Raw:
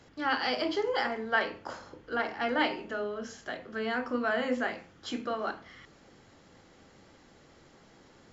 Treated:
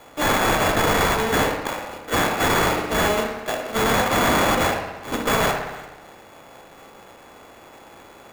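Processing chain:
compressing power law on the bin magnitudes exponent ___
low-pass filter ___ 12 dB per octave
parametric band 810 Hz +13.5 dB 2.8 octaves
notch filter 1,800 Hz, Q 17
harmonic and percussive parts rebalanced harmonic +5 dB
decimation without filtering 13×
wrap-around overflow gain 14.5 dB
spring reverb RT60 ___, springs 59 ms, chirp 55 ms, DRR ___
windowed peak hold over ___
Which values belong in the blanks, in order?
0.56, 5,000 Hz, 1.1 s, 4.5 dB, 5 samples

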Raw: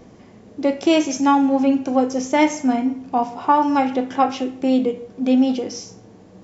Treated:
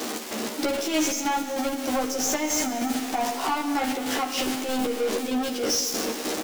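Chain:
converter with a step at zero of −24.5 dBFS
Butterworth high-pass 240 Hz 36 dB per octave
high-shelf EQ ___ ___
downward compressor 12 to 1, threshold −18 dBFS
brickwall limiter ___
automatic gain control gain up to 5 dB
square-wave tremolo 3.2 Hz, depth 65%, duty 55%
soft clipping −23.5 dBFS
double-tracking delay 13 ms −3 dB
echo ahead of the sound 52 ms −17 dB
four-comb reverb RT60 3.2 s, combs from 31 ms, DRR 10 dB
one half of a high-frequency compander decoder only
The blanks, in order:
2,700 Hz, +11 dB, −15.5 dBFS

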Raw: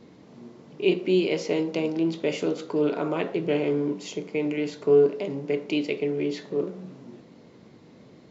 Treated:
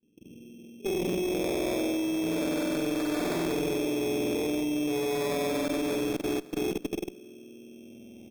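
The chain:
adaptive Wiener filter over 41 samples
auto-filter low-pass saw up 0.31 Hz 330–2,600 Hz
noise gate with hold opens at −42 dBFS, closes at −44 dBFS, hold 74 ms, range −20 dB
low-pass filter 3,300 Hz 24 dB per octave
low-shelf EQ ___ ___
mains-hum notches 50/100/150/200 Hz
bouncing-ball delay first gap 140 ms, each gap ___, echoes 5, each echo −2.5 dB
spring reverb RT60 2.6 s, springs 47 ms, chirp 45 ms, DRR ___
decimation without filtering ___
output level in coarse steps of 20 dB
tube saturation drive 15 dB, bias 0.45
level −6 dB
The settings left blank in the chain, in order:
230 Hz, +2.5 dB, 0.65×, −7.5 dB, 15×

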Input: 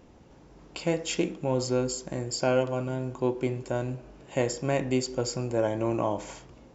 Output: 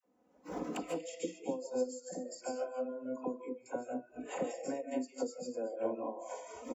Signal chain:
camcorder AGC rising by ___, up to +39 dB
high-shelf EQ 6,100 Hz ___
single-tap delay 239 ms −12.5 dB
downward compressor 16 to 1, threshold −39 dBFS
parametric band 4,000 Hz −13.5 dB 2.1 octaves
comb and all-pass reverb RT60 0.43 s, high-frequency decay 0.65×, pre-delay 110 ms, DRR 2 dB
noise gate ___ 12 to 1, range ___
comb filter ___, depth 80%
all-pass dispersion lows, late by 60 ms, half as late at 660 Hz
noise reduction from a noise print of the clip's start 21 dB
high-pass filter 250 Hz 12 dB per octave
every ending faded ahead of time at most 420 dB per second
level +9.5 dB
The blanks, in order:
24 dB per second, +2.5 dB, −40 dBFS, −9 dB, 4 ms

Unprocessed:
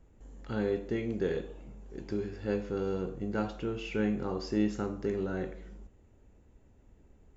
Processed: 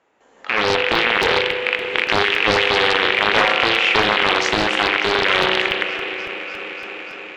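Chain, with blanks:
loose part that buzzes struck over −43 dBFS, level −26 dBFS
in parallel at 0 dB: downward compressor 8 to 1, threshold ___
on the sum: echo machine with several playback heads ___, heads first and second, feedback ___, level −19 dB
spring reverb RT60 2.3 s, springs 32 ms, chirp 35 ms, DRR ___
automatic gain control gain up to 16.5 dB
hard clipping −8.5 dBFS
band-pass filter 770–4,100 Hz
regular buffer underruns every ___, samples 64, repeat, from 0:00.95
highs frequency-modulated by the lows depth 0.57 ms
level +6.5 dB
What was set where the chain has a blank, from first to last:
−39 dBFS, 295 ms, 72%, 4.5 dB, 0.28 s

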